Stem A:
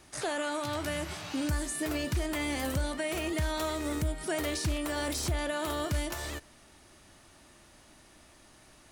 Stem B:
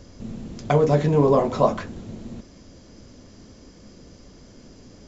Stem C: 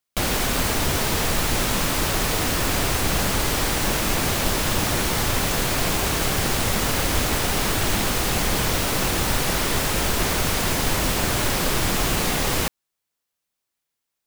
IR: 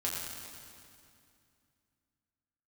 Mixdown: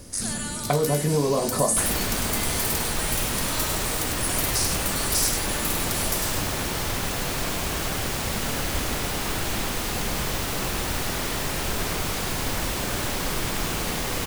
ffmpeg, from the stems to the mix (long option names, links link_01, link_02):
-filter_complex "[0:a]highpass=1000,highshelf=frequency=4100:gain=7,aexciter=amount=3.2:drive=3.8:freq=4400,volume=-2.5dB,asplit=2[link_01][link_02];[link_02]volume=-5dB[link_03];[1:a]acompressor=threshold=-20dB:ratio=6,volume=1dB[link_04];[2:a]adelay=1600,volume=-6.5dB,asplit=2[link_05][link_06];[link_06]volume=-4dB[link_07];[link_03][link_07]amix=inputs=2:normalize=0,aecho=0:1:100:1[link_08];[link_01][link_04][link_05][link_08]amix=inputs=4:normalize=0"